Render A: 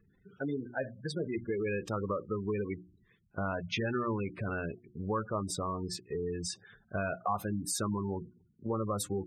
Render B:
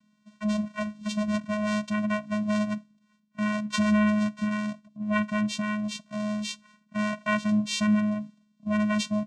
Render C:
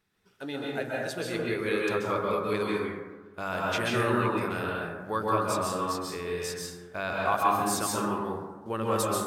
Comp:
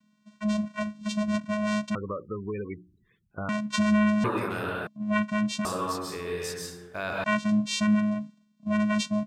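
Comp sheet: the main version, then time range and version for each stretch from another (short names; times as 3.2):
B
1.95–3.49 from A
4.24–4.87 from C
5.65–7.24 from C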